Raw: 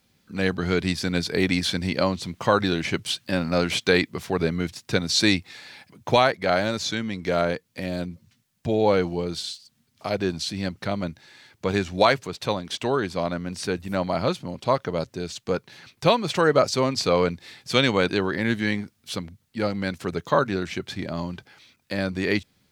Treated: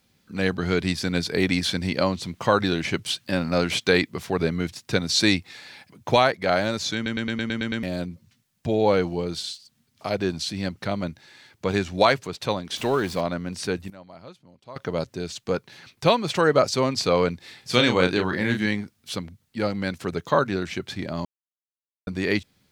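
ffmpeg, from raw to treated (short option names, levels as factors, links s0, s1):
-filter_complex "[0:a]asettb=1/sr,asplit=3[s0][s1][s2];[s0]atrim=end=12.764[s3];[s1]atrim=start=12.76:end=13.21,asetpts=PTS-STARTPTS,afade=t=in:d=0.004:c=qsin,afade=t=out:st=0.446:d=0.004:c=qsin,aeval=exprs='val(0)+0.5*0.0178*sgn(val(0))':c=same[s4];[s2]atrim=start=13.206[s5];[s3][s4]acrossfade=d=0.004:c1=hsin:c2=qsin[s6];[s6][s5]acrossfade=d=0.004:c1=qsin:c2=hsin,asettb=1/sr,asplit=3[s7][s8][s9];[s7]atrim=end=17.594[s10];[s8]atrim=start=17.59:end=18.66,asetpts=PTS-STARTPTS,afade=t=in:d=0.004:c=qsin,afade=t=out:st=1.066:d=0.004:c=qsin,asplit=2[s11][s12];[s12]adelay=33,volume=0.501[s13];[s11][s13]amix=inputs=2:normalize=0,atrim=end_sample=47187[s14];[s9]atrim=start=18.656[s15];[s10][s14]acrossfade=d=0.004:c1=hsin:c2=qsin[s16];[s16][s15]acrossfade=d=0.004:c1=qsin:c2=hsin,asplit=13[s17][s18][s19][s20][s21][s22][s23][s24][s25][s26][s27][s28][s29];[s17]atrim=end=7.062[s30];[s18]atrim=start=6.948:end=7.062[s31];[s19]atrim=start=6.948:end=7.062[s32];[s20]atrim=start=6.948:end=7.062[s33];[s21]atrim=start=6.948:end=7.062[s34];[s22]atrim=start=6.948:end=7.062[s35];[s23]atrim=start=6.948:end=7.062[s36];[s24]atrim=start=6.948:end=7.062[s37];[s25]atrim=start=7.828:end=13.9,asetpts=PTS-STARTPTS,afade=t=out:st=5.902:d=0.17:c=log:silence=0.1[s38];[s26]atrim=start=13.9:end=14.76,asetpts=PTS-STARTPTS,volume=0.1[s39];[s27]atrim=start=14.76:end=21.25,asetpts=PTS-STARTPTS,afade=t=in:d=0.17:c=log:silence=0.1,afade=t=out:st=6.486:d=0.004:c=hsin[s40];[s28]atrim=start=21.25:end=22.07,asetpts=PTS-STARTPTS,volume=0[s41];[s29]atrim=start=22.07,asetpts=PTS-STARTPTS,afade=t=in:d=0.004:c=hsin[s42];[s30][s31]acrossfade=d=0.004:c1=hsin:c2=hsin[s43];[s43][s32]acrossfade=d=0.004:c1=hsin:c2=hsin[s44];[s44][s33]acrossfade=d=0.004:c1=hsin:c2=hsin[s45];[s45][s34]acrossfade=d=0.004:c1=hsin:c2=hsin[s46];[s46][s35]acrossfade=d=0.004:c1=hsin:c2=hsin[s47];[s47][s36]acrossfade=d=0.004:c1=hsin:c2=hsin[s48];[s48][s37]acrossfade=d=0.004:c1=hsin:c2=hsin[s49];[s38][s39][s40][s41][s42]concat=n=5:v=0:a=1[s50];[s49][s50]acrossfade=d=0.004:c1=hsin:c2=hsin"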